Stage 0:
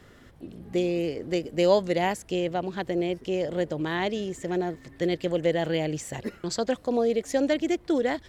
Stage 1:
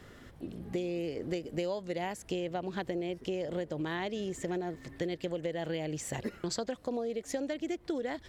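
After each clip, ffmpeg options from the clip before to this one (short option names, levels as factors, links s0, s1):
-af "acompressor=threshold=0.0282:ratio=12"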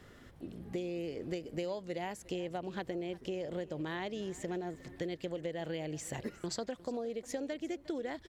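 -af "aecho=1:1:357:0.106,volume=0.668"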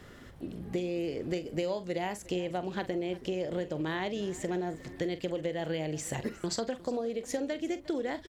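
-filter_complex "[0:a]asplit=2[s0][s1];[s1]adelay=44,volume=0.224[s2];[s0][s2]amix=inputs=2:normalize=0,volume=1.78"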